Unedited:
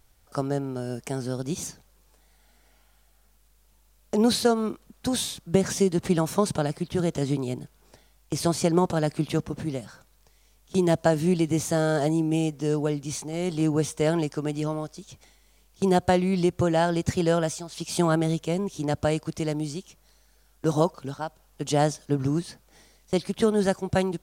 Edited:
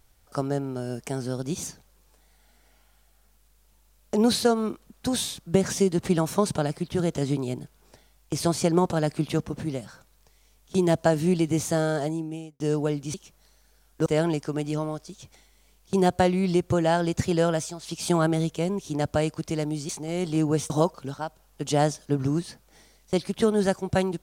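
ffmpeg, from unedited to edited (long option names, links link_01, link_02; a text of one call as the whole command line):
ffmpeg -i in.wav -filter_complex "[0:a]asplit=6[link_01][link_02][link_03][link_04][link_05][link_06];[link_01]atrim=end=12.6,asetpts=PTS-STARTPTS,afade=type=out:start_time=11.74:duration=0.86[link_07];[link_02]atrim=start=12.6:end=13.142,asetpts=PTS-STARTPTS,afade=type=in:duration=0.004:curve=hsin[link_08];[link_03]atrim=start=19.778:end=20.702[link_09];[link_04]atrim=start=13.948:end=19.782[link_10];[link_05]atrim=start=13.138:end=13.952[link_11];[link_06]atrim=start=20.698[link_12];[link_07][link_08]concat=n=2:v=0:a=1[link_13];[link_13][link_09]acrossfade=duration=0.004:curve1=hsin:curve2=hsin[link_14];[link_14][link_10]acrossfade=duration=0.004:curve1=hsin:curve2=hsin[link_15];[link_15][link_11]acrossfade=duration=0.004:curve1=hsin:curve2=hsin[link_16];[link_16][link_12]acrossfade=duration=0.004:curve1=hsin:curve2=hsin" out.wav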